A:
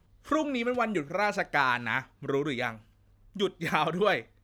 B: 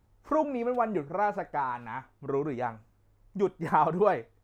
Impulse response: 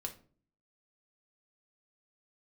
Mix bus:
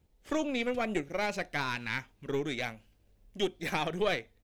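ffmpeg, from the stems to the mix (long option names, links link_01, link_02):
-filter_complex "[0:a]dynaudnorm=framelen=170:gausssize=3:maxgain=7dB,volume=-5.5dB[link_01];[1:a]acompressor=threshold=-35dB:ratio=6,volume=-1,adelay=0.5,volume=-1dB[link_02];[link_01][link_02]amix=inputs=2:normalize=0,firequalizer=gain_entry='entry(410,0);entry(1200,-9);entry(2300,1)':delay=0.05:min_phase=1,aeval=exprs='(tanh(7.94*val(0)+0.6)-tanh(0.6))/7.94':channel_layout=same"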